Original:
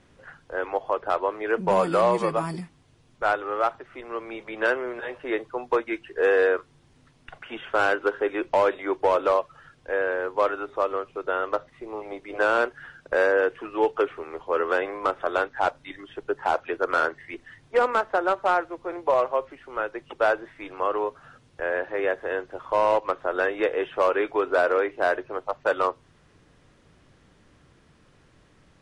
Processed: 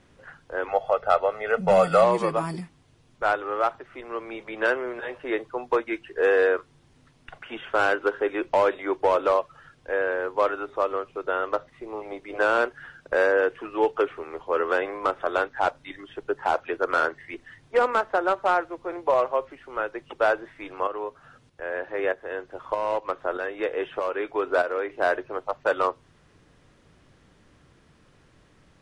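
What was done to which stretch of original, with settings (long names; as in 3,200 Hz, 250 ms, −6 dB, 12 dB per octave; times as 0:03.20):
0:00.68–0:02.04: comb filter 1.5 ms, depth 88%
0:20.87–0:24.90: shaped tremolo saw up 1.6 Hz, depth 60%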